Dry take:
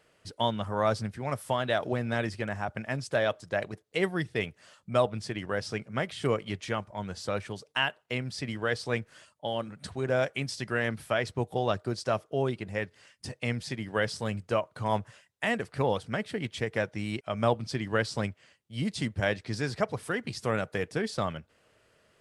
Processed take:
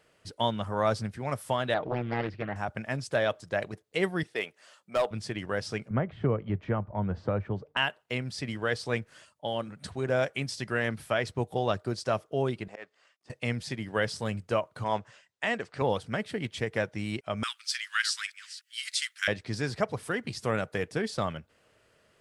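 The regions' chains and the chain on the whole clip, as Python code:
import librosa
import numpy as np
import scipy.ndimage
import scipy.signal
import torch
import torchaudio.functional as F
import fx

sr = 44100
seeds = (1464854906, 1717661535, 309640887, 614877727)

y = fx.chain(x, sr, fx.air_absorb(metres=340.0),
    fx.comb(ms=6.5, depth=0.33),
    fx.doppler_dist(depth_ms=0.61), at=(1.74, 2.56))
y = fx.chain(y, sr, fx.highpass(hz=390.0, slope=12),
    fx.clip_hard(threshold_db=-20.5), at=(4.23, 5.11))
y = fx.chain(y, sr, fx.lowpass(hz=1300.0, slope=12),
    fx.low_shelf(hz=160.0, db=10.0),
    fx.band_squash(depth_pct=70), at=(5.9, 7.77))
y = fx.chain(y, sr, fx.law_mismatch(coded='A'),
    fx.auto_swell(attack_ms=178.0),
    fx.cabinet(low_hz=350.0, low_slope=12, high_hz=7700.0, hz=(670.0, 1200.0, 5800.0), db=(6, 8, -4)), at=(12.68, 13.3))
y = fx.chain(y, sr, fx.lowpass(hz=7700.0, slope=24),
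    fx.low_shelf(hz=190.0, db=-10.0), at=(14.84, 15.82))
y = fx.chain(y, sr, fx.reverse_delay(ms=296, wet_db=-13.5),
    fx.steep_highpass(hz=1300.0, slope=48),
    fx.high_shelf(hz=2300.0, db=10.5), at=(17.43, 19.28))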